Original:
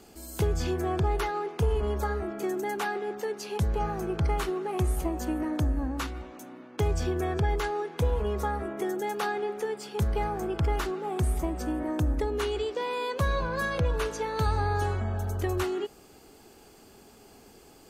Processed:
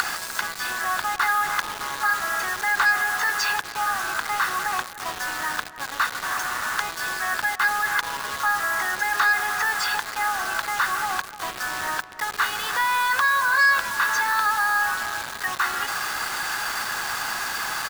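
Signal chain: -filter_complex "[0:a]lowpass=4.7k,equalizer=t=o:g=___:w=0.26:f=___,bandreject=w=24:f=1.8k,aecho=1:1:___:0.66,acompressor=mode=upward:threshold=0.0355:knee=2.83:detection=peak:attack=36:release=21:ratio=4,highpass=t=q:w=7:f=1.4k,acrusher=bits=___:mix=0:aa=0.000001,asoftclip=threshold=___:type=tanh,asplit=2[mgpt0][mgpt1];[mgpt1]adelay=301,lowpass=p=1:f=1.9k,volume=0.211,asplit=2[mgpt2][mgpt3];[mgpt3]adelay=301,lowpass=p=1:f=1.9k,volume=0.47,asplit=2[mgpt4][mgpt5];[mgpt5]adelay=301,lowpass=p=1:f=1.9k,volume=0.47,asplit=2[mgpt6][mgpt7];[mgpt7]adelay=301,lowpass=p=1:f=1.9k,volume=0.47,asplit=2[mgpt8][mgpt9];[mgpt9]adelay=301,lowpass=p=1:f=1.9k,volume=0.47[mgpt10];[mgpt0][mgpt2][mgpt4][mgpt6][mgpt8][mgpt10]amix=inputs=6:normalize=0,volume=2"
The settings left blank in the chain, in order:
-8.5, 2.8k, 1.1, 5, 0.106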